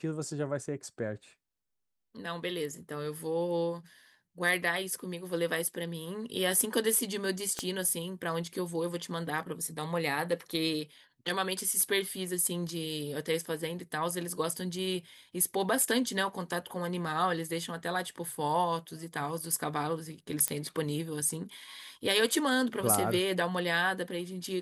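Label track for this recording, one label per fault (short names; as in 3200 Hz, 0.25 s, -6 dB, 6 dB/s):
7.590000	7.590000	pop -17 dBFS
20.480000	20.480000	pop -14 dBFS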